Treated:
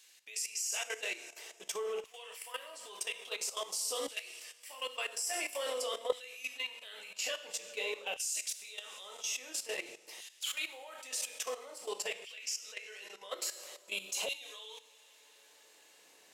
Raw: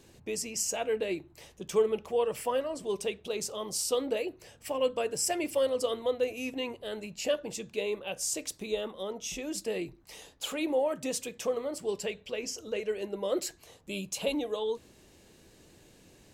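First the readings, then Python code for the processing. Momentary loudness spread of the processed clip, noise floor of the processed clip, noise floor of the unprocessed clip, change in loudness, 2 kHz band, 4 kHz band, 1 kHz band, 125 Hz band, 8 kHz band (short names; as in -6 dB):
12 LU, -62 dBFS, -59 dBFS, -5.5 dB, +1.0 dB, 0.0 dB, -6.5 dB, under -25 dB, -1.5 dB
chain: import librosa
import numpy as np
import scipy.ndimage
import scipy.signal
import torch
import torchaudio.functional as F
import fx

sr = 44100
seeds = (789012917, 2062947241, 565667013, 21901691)

y = fx.rev_double_slope(x, sr, seeds[0], early_s=0.53, late_s=3.8, knee_db=-18, drr_db=1.0)
y = fx.filter_lfo_highpass(y, sr, shape='saw_down', hz=0.49, low_hz=680.0, high_hz=2400.0, q=0.77)
y = fx.level_steps(y, sr, step_db=13)
y = y * librosa.db_to_amplitude(3.0)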